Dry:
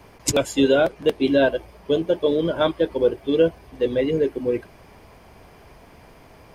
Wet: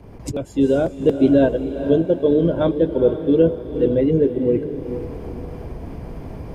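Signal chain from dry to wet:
fade in at the beginning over 1.06 s
tilt shelving filter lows +10 dB, about 630 Hz
upward compression, threshold −22 dBFS
feedback delay with all-pass diffusion 452 ms, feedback 42%, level −10 dB

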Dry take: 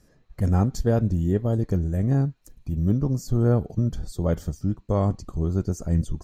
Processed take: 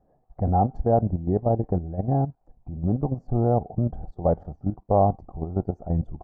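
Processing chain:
output level in coarse steps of 11 dB
low-pass with resonance 760 Hz, resonance Q 7.5

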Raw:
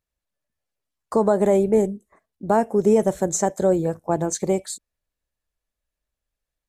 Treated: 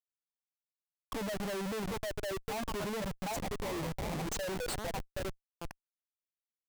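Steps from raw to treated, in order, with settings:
spectral dynamics exaggerated over time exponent 3
low shelf with overshoot 110 Hz −6 dB, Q 1.5
echo through a band-pass that steps 755 ms, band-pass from 750 Hz, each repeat 0.7 octaves, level −1 dB
0:03.36–0:04.23: sample-rate reduction 1,500 Hz, jitter 20%
comparator with hysteresis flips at −37.5 dBFS
level −8.5 dB

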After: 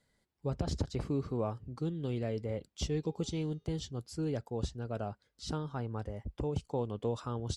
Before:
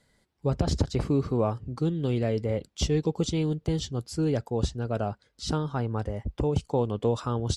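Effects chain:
0:02.95–0:03.83: hum removal 409.5 Hz, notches 16
level −8.5 dB

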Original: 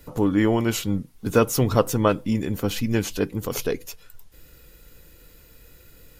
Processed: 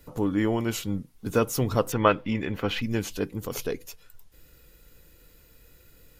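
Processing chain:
0:01.92–0:02.82: drawn EQ curve 230 Hz 0 dB, 2,100 Hz +10 dB, 2,900 Hz +8 dB, 8,000 Hz −12 dB
level −5 dB

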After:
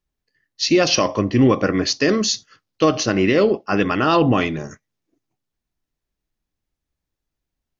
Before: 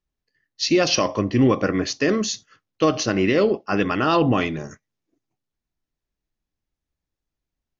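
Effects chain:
0:01.77–0:02.83: parametric band 4,700 Hz +6 dB 0.6 octaves
level +2.5 dB

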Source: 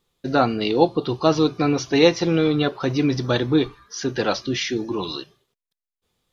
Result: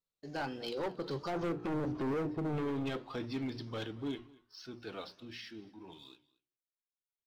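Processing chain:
source passing by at 0:01.68, 34 m/s, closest 6.7 metres
mains-hum notches 60/120/180/240/300/360 Hz
treble cut that deepens with the level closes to 560 Hz, closed at −21 dBFS
high-shelf EQ 2,000 Hz +3 dB
brickwall limiter −20.5 dBFS, peak gain reduction 10.5 dB
leveller curve on the samples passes 1
tempo change 0.87×
hard clipping −27.5 dBFS, distortion −11 dB
flanger 1.3 Hz, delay 6 ms, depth 8.1 ms, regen −82%
single-tap delay 230 ms −23 dB

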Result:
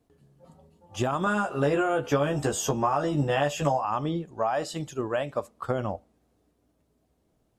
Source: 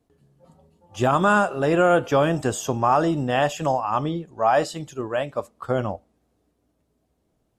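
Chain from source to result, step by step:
downward compressor 10 to 1, threshold −23 dBFS, peak gain reduction 10.5 dB
0:01.25–0:03.85: double-tracking delay 14 ms −2 dB

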